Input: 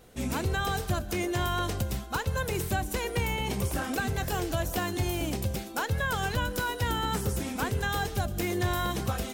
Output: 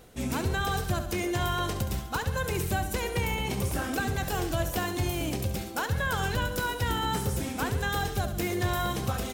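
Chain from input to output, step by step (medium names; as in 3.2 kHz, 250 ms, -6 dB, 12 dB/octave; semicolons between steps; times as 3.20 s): reverse; upward compressor, threshold -33 dBFS; reverse; feedback delay 69 ms, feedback 51%, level -10.5 dB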